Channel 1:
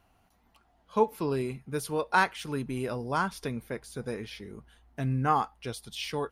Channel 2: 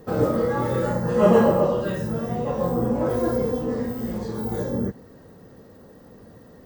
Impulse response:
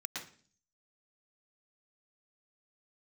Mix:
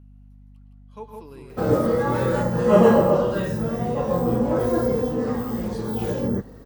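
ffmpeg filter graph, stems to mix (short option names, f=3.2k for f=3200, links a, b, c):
-filter_complex "[0:a]volume=-14dB,asplit=3[a][b][c];[b]volume=-6dB[d];[c]volume=-3.5dB[e];[1:a]adelay=1500,volume=1.5dB[f];[2:a]atrim=start_sample=2205[g];[d][g]afir=irnorm=-1:irlink=0[h];[e]aecho=0:1:163:1[i];[a][f][h][i]amix=inputs=4:normalize=0,aeval=exprs='val(0)+0.00501*(sin(2*PI*50*n/s)+sin(2*PI*2*50*n/s)/2+sin(2*PI*3*50*n/s)/3+sin(2*PI*4*50*n/s)/4+sin(2*PI*5*50*n/s)/5)':c=same"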